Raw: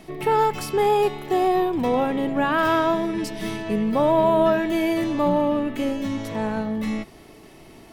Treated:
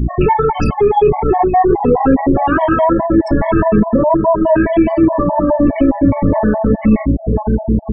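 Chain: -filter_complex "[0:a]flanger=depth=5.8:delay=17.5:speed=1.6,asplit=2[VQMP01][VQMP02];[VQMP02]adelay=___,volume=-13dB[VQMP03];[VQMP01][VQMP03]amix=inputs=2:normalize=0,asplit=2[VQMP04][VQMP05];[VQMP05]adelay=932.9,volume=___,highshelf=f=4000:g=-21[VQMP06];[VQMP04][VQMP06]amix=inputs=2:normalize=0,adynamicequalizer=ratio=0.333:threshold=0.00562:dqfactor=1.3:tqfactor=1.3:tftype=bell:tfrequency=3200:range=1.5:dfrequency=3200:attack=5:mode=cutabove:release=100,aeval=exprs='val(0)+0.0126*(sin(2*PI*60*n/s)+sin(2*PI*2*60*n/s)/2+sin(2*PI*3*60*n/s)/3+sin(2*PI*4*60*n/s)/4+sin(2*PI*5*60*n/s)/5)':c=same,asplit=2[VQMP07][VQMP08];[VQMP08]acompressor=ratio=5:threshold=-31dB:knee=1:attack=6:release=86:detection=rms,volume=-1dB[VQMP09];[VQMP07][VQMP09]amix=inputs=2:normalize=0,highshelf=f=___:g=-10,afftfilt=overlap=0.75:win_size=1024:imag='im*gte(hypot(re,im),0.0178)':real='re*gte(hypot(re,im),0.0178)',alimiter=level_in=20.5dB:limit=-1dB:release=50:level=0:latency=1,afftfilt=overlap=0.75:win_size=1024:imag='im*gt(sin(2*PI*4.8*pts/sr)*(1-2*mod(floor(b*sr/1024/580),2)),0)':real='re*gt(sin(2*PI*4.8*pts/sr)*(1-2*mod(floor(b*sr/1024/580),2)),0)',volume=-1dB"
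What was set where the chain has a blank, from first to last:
12, -11dB, 2100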